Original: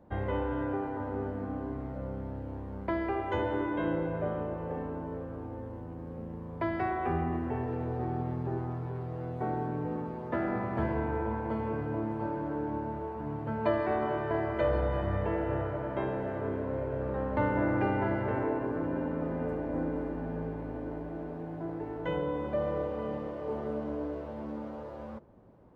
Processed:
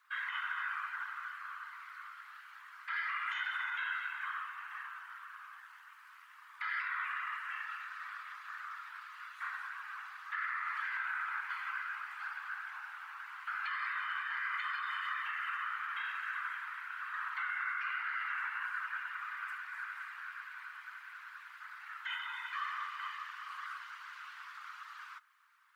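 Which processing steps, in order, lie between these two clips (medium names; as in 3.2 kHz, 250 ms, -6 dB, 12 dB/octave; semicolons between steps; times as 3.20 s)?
steep high-pass 1.2 kHz 72 dB/octave; peak limiter -40 dBFS, peak gain reduction 10.5 dB; whisper effect; trim +10.5 dB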